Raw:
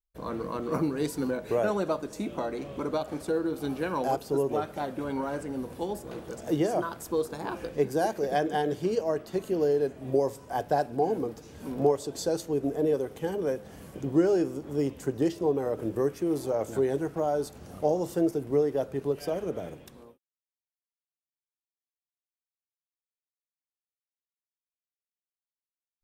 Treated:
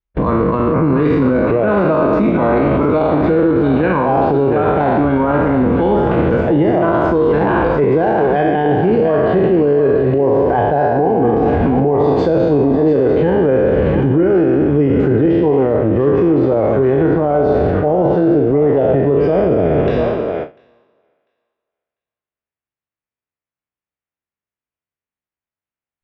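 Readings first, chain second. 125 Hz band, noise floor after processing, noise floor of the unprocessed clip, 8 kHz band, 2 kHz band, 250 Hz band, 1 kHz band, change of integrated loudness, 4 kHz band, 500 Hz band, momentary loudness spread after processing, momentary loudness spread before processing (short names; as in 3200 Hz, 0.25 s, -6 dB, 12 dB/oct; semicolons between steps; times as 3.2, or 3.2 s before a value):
+20.0 dB, under -85 dBFS, under -85 dBFS, under -15 dB, +17.0 dB, +17.0 dB, +15.5 dB, +16.0 dB, n/a, +15.5 dB, 2 LU, 8 LU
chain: spectral trails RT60 1.29 s; LPF 2600 Hz 24 dB/oct; reverse; compressor 6:1, threshold -30 dBFS, peak gain reduction 13 dB; reverse; HPF 47 Hz; on a send: thinning echo 0.696 s, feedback 16%, high-pass 780 Hz, level -7.5 dB; on the sum: gate with hold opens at -37 dBFS; low shelf 200 Hz +10 dB; maximiser +30.5 dB; gain -5 dB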